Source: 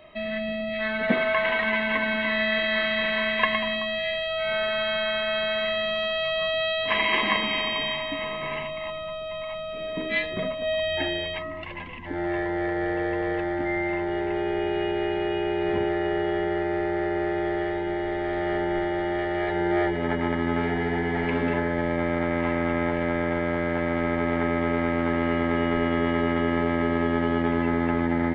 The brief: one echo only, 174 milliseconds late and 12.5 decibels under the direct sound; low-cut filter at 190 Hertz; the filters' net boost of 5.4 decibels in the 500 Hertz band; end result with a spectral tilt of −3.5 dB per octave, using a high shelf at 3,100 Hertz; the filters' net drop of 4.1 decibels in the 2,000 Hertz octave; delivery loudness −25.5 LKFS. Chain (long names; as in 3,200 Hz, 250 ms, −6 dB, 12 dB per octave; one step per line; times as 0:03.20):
high-pass filter 190 Hz
parametric band 500 Hz +8.5 dB
parametric band 2,000 Hz −3 dB
high-shelf EQ 3,100 Hz −7 dB
single-tap delay 174 ms −12.5 dB
level −2.5 dB